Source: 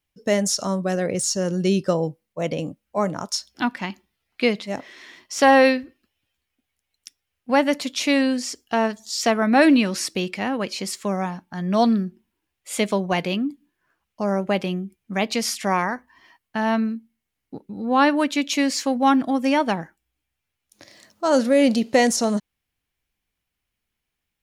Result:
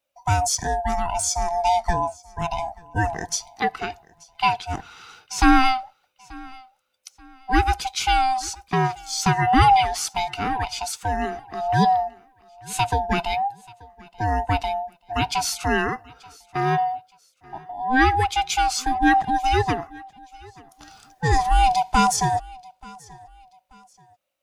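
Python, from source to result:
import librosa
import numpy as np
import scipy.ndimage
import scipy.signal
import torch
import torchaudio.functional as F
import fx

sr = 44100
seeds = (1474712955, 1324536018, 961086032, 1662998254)

y = fx.band_swap(x, sr, width_hz=500)
y = fx.echo_feedback(y, sr, ms=883, feedback_pct=34, wet_db=-23.5)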